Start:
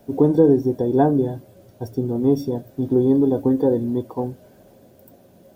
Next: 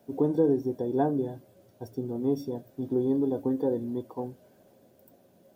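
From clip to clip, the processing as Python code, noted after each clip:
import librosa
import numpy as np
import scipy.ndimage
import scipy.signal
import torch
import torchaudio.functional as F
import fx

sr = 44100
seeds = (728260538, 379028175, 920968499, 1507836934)

y = fx.highpass(x, sr, hz=140.0, slope=6)
y = y * 10.0 ** (-8.5 / 20.0)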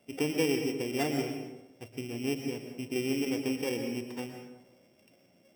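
y = np.r_[np.sort(x[:len(x) // 16 * 16].reshape(-1, 16), axis=1).ravel(), x[len(x) // 16 * 16:]]
y = fx.rev_plate(y, sr, seeds[0], rt60_s=0.95, hf_ratio=0.55, predelay_ms=105, drr_db=5.0)
y = y * 10.0 ** (-5.5 / 20.0)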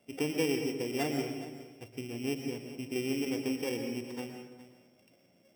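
y = x + 10.0 ** (-16.0 / 20.0) * np.pad(x, (int(416 * sr / 1000.0), 0))[:len(x)]
y = y * 10.0 ** (-2.0 / 20.0)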